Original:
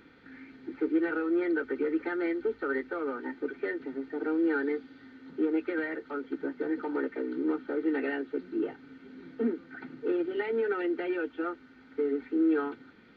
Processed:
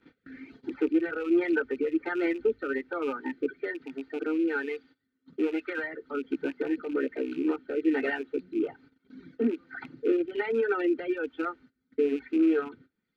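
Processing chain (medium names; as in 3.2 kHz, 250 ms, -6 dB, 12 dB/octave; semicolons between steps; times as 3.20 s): rattle on loud lows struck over -41 dBFS, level -37 dBFS; reverb removal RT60 1.9 s; 3.50–5.84 s: bass shelf 450 Hz -5.5 dB; gate -56 dBFS, range -20 dB; rotary cabinet horn 1.2 Hz; trim +6 dB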